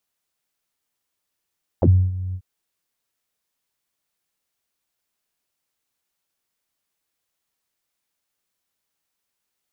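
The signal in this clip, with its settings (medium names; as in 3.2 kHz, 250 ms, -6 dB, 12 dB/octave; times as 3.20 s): synth note saw F#2 12 dB/octave, low-pass 110 Hz, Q 7.5, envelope 3 oct, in 0.06 s, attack 3.5 ms, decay 0.29 s, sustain -16.5 dB, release 0.07 s, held 0.52 s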